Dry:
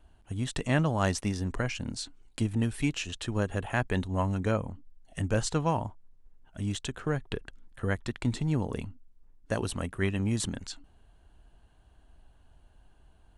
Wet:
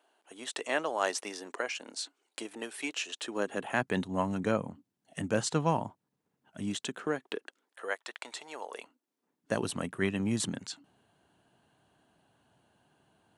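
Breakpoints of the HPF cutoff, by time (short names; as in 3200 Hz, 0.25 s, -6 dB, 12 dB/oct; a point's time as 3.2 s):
HPF 24 dB/oct
3.1 s 380 Hz
3.91 s 140 Hz
6.62 s 140 Hz
8.03 s 550 Hz
8.72 s 550 Hz
9.57 s 130 Hz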